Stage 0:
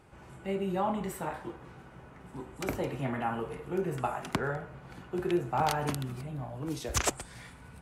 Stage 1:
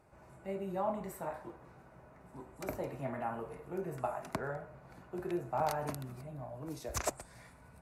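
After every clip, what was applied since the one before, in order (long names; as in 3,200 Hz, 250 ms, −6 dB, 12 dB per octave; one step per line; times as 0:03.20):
thirty-one-band graphic EQ 630 Hz +9 dB, 1,000 Hz +3 dB, 3,150 Hz −10 dB, 12,500 Hz +5 dB
level −8 dB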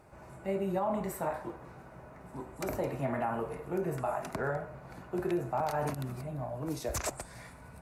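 brickwall limiter −30 dBFS, peak gain reduction 10 dB
level +7 dB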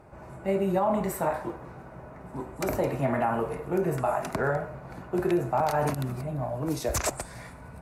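one half of a high-frequency compander decoder only
level +6.5 dB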